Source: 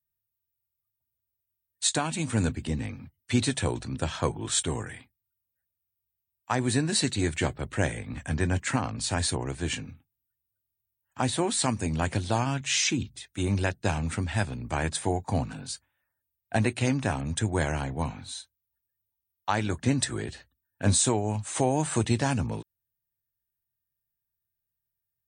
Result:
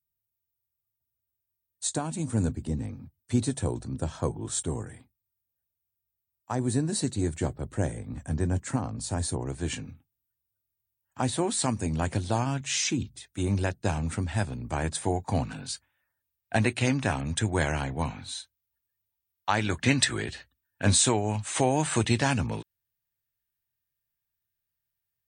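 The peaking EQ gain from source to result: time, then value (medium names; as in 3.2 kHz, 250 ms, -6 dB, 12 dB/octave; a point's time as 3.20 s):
peaking EQ 2.5 kHz 2.1 oct
9.27 s -14 dB
9.71 s -4.5 dB
14.90 s -4.5 dB
15.41 s +3 dB
19.57 s +3 dB
19.91 s +12.5 dB
20.32 s +5.5 dB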